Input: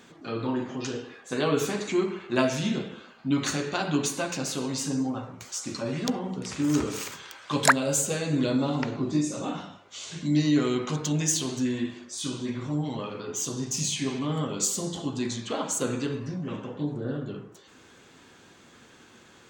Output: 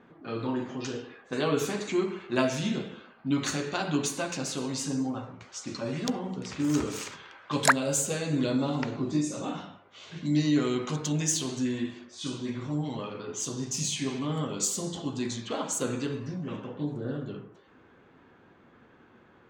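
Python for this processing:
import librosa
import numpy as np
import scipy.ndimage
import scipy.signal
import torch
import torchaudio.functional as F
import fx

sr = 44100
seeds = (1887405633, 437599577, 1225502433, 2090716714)

y = fx.env_lowpass(x, sr, base_hz=1400.0, full_db=-26.0)
y = F.gain(torch.from_numpy(y), -2.0).numpy()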